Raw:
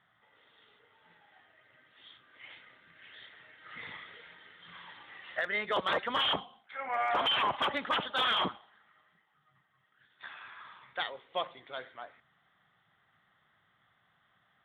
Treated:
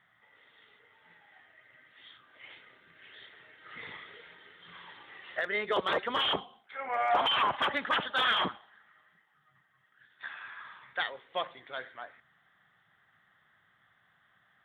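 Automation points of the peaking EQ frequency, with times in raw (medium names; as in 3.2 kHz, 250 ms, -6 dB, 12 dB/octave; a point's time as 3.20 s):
peaking EQ +6.5 dB 0.46 oct
2.08 s 2 kHz
2.49 s 400 Hz
6.87 s 400 Hz
7.56 s 1.7 kHz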